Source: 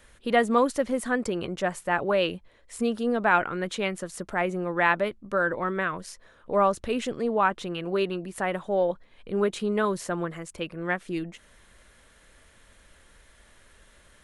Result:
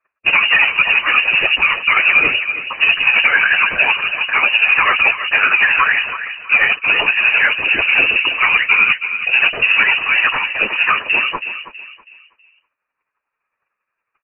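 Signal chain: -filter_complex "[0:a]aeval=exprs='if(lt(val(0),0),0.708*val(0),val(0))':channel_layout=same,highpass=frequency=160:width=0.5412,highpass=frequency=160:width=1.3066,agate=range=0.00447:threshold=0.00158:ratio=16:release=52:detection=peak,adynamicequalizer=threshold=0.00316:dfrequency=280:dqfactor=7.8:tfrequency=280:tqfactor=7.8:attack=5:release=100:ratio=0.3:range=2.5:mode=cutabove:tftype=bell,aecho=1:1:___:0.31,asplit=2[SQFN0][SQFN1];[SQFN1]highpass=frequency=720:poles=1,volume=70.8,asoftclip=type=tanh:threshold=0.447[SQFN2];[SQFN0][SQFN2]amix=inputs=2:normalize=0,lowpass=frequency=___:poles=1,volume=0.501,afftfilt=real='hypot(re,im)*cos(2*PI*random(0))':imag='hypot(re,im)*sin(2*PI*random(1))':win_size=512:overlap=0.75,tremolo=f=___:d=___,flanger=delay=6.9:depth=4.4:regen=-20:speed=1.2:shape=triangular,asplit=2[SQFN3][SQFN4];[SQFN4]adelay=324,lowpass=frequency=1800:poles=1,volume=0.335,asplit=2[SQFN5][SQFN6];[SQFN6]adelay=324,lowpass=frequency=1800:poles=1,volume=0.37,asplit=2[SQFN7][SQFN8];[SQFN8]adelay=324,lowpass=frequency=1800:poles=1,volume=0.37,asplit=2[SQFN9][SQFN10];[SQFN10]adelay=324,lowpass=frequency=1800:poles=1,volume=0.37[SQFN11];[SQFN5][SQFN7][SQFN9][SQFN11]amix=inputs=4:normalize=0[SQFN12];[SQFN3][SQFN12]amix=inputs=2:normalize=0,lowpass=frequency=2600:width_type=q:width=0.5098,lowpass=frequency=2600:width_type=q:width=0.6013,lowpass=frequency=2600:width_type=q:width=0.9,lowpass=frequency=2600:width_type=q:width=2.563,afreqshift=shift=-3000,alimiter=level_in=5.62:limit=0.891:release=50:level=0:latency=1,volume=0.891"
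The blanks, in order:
1.6, 2200, 11, 0.54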